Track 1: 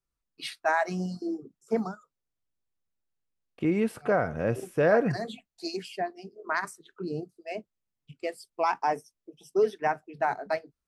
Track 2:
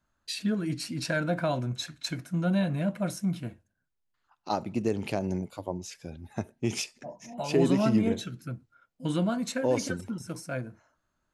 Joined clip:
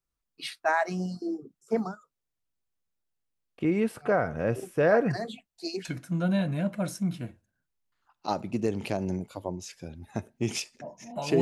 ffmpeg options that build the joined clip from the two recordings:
-filter_complex "[0:a]apad=whole_dur=11.41,atrim=end=11.41,atrim=end=5.852[a];[1:a]atrim=start=2.068:end=7.63[b];[a][b]acrossfade=d=0.004:c1=hsin:c2=hsin"

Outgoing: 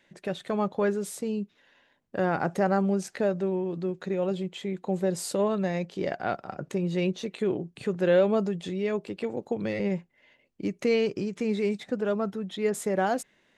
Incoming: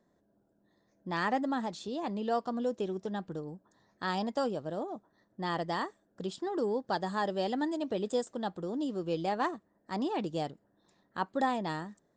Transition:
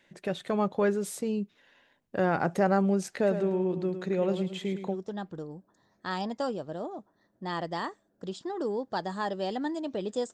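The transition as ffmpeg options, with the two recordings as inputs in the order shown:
-filter_complex "[0:a]asplit=3[a][b][c];[a]afade=t=out:st=3.26:d=0.02[d];[b]aecho=1:1:108|216|324:0.335|0.0904|0.0244,afade=t=in:st=3.26:d=0.02,afade=t=out:st=4.96:d=0.02[e];[c]afade=t=in:st=4.96:d=0.02[f];[d][e][f]amix=inputs=3:normalize=0,apad=whole_dur=10.33,atrim=end=10.33,atrim=end=4.96,asetpts=PTS-STARTPTS[g];[1:a]atrim=start=2.85:end=8.3,asetpts=PTS-STARTPTS[h];[g][h]acrossfade=d=0.08:c1=tri:c2=tri"

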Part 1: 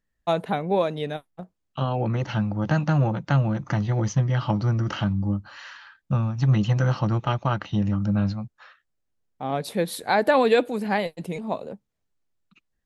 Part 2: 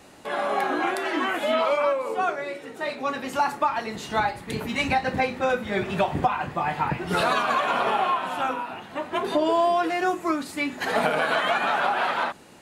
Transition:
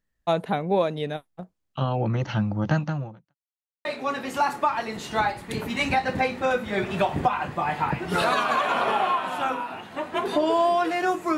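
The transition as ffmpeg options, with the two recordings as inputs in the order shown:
-filter_complex "[0:a]apad=whole_dur=11.37,atrim=end=11.37,asplit=2[a][b];[a]atrim=end=3.35,asetpts=PTS-STARTPTS,afade=t=out:st=2.72:d=0.63:c=qua[c];[b]atrim=start=3.35:end=3.85,asetpts=PTS-STARTPTS,volume=0[d];[1:a]atrim=start=2.84:end=10.36,asetpts=PTS-STARTPTS,afade=t=in:d=0.004:c=hsin[e];[c][d][e]concat=n=3:v=0:a=1"

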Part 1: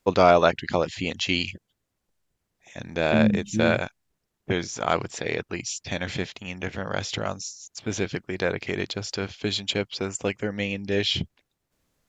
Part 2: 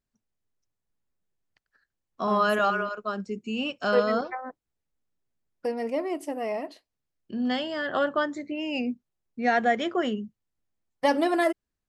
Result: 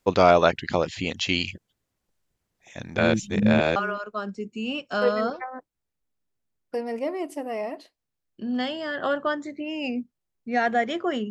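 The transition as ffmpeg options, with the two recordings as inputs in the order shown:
-filter_complex "[0:a]apad=whole_dur=11.3,atrim=end=11.3,asplit=2[a][b];[a]atrim=end=2.972[c];[b]atrim=start=2.968:end=3.762,asetpts=PTS-STARTPTS,areverse[d];[1:a]atrim=start=2.668:end=10.21[e];[c][d]acrossfade=d=0.004:c1=hsin:c2=hsin[f];[f][e]acrossfade=d=0.004:c1=hsin:c2=hsin"

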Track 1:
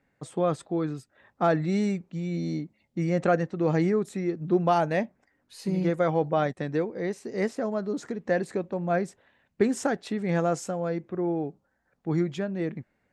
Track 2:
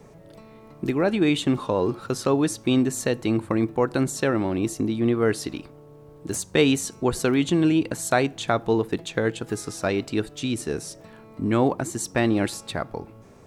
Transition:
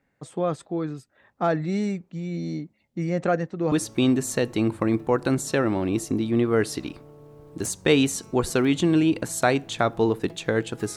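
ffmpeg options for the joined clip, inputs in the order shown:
-filter_complex "[0:a]apad=whole_dur=10.96,atrim=end=10.96,atrim=end=3.722[a];[1:a]atrim=start=2.408:end=9.65[b];[a][b]acrossfade=d=0.004:c1=hsin:c2=hsin"

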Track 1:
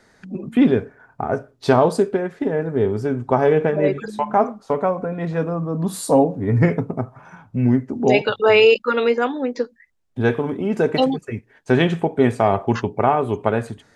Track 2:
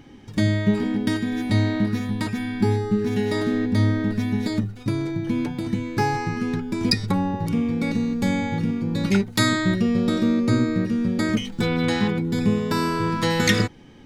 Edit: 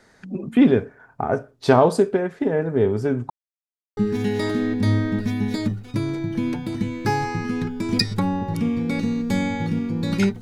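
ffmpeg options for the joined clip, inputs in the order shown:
-filter_complex "[0:a]apad=whole_dur=10.41,atrim=end=10.41,asplit=2[a][b];[a]atrim=end=3.3,asetpts=PTS-STARTPTS,afade=t=out:st=3.296:d=0.004:c=hsin[c];[b]atrim=start=3.3:end=3.97,asetpts=PTS-STARTPTS,volume=0[d];[1:a]atrim=start=2.89:end=9.33,asetpts=PTS-STARTPTS,afade=t=in:d=0.004:c=hsin[e];[c][d][e]concat=n=3:v=0:a=1"

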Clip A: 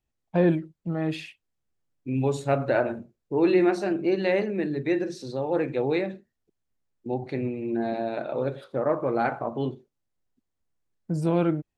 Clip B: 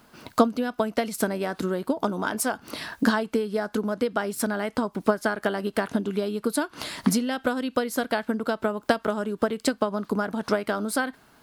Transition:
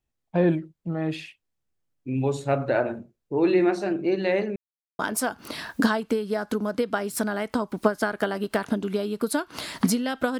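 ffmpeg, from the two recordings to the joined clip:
-filter_complex "[0:a]apad=whole_dur=10.39,atrim=end=10.39,asplit=2[a][b];[a]atrim=end=4.56,asetpts=PTS-STARTPTS,afade=t=out:st=4.556:d=0.004:c=hsin[c];[b]atrim=start=4.56:end=4.99,asetpts=PTS-STARTPTS,volume=0[d];[1:a]atrim=start=2.22:end=7.62,asetpts=PTS-STARTPTS,afade=t=in:d=0.004:c=hsin[e];[c][d][e]concat=n=3:v=0:a=1"

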